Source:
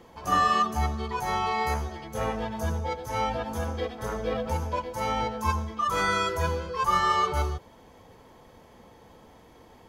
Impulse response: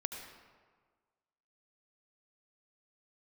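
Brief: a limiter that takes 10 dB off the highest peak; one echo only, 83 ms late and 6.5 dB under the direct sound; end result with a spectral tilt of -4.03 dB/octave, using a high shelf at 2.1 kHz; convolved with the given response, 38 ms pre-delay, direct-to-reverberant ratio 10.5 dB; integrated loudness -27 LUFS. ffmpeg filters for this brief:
-filter_complex "[0:a]highshelf=f=2100:g=8,alimiter=limit=0.106:level=0:latency=1,aecho=1:1:83:0.473,asplit=2[s0][s1];[1:a]atrim=start_sample=2205,adelay=38[s2];[s1][s2]afir=irnorm=-1:irlink=0,volume=0.282[s3];[s0][s3]amix=inputs=2:normalize=0,volume=1.19"

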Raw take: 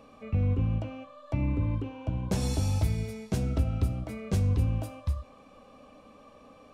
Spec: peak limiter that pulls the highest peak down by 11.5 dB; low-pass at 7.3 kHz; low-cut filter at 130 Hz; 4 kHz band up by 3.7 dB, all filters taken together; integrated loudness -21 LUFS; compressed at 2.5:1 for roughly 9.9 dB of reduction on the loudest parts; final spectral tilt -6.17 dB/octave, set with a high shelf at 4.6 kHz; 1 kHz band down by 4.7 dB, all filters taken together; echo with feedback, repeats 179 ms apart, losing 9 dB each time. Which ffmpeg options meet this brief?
-af "highpass=130,lowpass=7300,equalizer=f=1000:t=o:g=-6.5,equalizer=f=4000:t=o:g=8.5,highshelf=f=4600:g=-5.5,acompressor=threshold=0.00794:ratio=2.5,alimiter=level_in=4.73:limit=0.0631:level=0:latency=1,volume=0.211,aecho=1:1:179|358|537|716:0.355|0.124|0.0435|0.0152,volume=21.1"

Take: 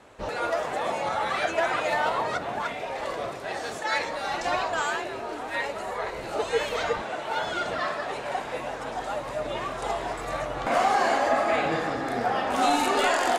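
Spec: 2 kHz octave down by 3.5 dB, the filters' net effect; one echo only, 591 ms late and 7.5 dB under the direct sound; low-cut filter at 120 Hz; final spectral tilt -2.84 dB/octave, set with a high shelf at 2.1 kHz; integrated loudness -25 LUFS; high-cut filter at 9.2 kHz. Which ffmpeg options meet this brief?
-af "highpass=120,lowpass=9200,equalizer=f=2000:t=o:g=-6.5,highshelf=f=2100:g=3.5,aecho=1:1:591:0.422,volume=1.33"

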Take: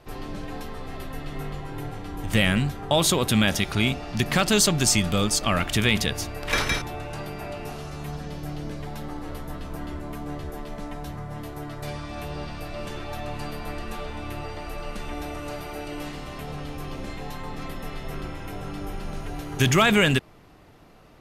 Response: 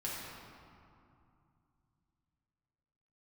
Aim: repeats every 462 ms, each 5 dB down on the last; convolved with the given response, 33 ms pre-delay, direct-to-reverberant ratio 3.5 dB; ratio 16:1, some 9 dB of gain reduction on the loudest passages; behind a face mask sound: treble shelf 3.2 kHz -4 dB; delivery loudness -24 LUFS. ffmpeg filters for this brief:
-filter_complex "[0:a]acompressor=threshold=0.0631:ratio=16,aecho=1:1:462|924|1386|1848|2310|2772|3234:0.562|0.315|0.176|0.0988|0.0553|0.031|0.0173,asplit=2[s0][s1];[1:a]atrim=start_sample=2205,adelay=33[s2];[s1][s2]afir=irnorm=-1:irlink=0,volume=0.473[s3];[s0][s3]amix=inputs=2:normalize=0,highshelf=f=3200:g=-4,volume=1.88"

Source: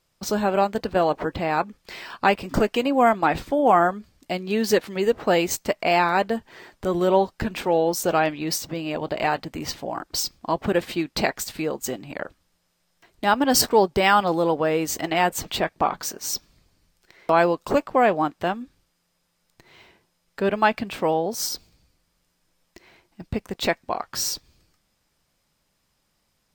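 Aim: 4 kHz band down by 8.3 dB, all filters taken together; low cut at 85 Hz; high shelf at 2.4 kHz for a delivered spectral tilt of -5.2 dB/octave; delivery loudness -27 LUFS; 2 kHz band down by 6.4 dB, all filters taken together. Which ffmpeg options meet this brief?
-af "highpass=85,equalizer=f=2000:t=o:g=-5,highshelf=f=2400:g=-5.5,equalizer=f=4000:t=o:g=-4.5,volume=0.75"

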